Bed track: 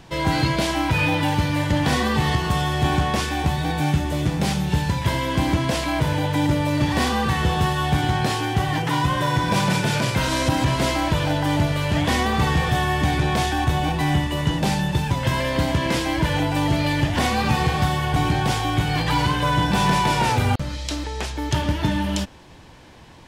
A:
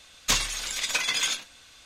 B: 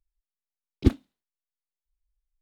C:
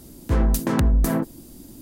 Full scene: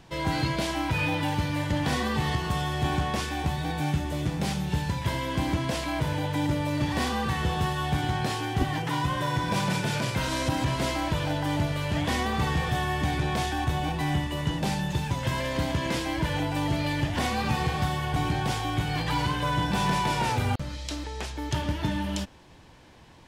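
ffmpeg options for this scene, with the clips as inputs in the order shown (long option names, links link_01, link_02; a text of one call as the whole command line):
ffmpeg -i bed.wav -i cue0.wav -i cue1.wav -filter_complex "[0:a]volume=-6.5dB[link_01];[1:a]acompressor=threshold=-30dB:ratio=6:attack=3.2:release=140:knee=1:detection=peak[link_02];[2:a]atrim=end=2.41,asetpts=PTS-STARTPTS,volume=-8.5dB,afade=type=in:duration=0.004:curve=hsin,afade=type=out:start_time=2.406:duration=0.004:curve=hsin,adelay=7750[link_03];[link_02]atrim=end=1.85,asetpts=PTS-STARTPTS,volume=-14.5dB,afade=type=in:duration=0.004:curve=hsin,afade=type=out:start_time=1.846:duration=0.004:curve=hsin,adelay=14620[link_04];[link_01][link_03][link_04]amix=inputs=3:normalize=0" out.wav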